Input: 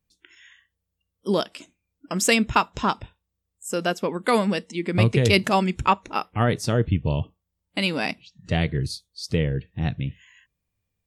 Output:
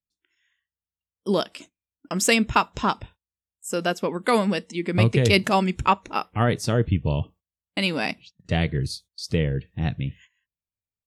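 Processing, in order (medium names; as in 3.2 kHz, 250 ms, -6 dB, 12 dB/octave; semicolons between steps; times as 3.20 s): gate -46 dBFS, range -19 dB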